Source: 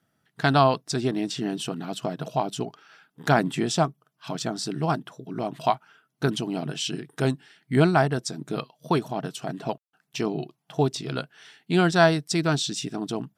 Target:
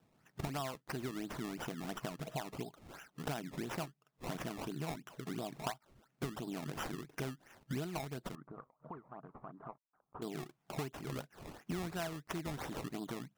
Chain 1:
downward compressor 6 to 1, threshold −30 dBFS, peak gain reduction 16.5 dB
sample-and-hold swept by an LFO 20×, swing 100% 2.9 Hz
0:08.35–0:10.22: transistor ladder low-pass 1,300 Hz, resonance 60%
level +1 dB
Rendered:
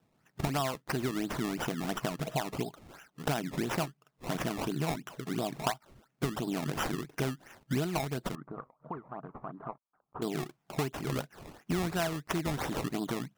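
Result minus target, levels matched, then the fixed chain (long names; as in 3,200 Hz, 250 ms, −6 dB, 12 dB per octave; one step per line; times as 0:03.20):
downward compressor: peak gain reduction −8.5 dB
downward compressor 6 to 1, threshold −40 dBFS, peak gain reduction 25 dB
sample-and-hold swept by an LFO 20×, swing 100% 2.9 Hz
0:08.35–0:10.22: transistor ladder low-pass 1,300 Hz, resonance 60%
level +1 dB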